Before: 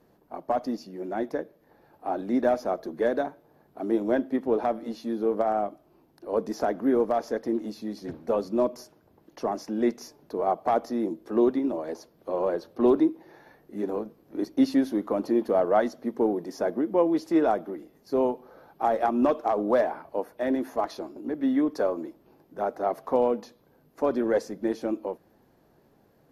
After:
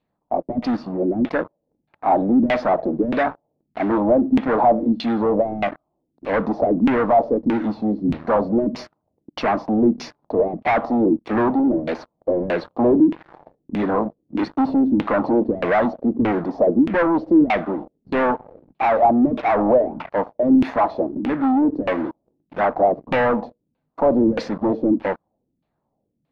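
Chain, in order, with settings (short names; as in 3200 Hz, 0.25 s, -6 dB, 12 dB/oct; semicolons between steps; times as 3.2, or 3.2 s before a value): fifteen-band EQ 400 Hz -9 dB, 1600 Hz -9 dB, 4000 Hz +11 dB; sample leveller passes 5; LFO low-pass saw down 1.6 Hz 210–2700 Hz; gain -2 dB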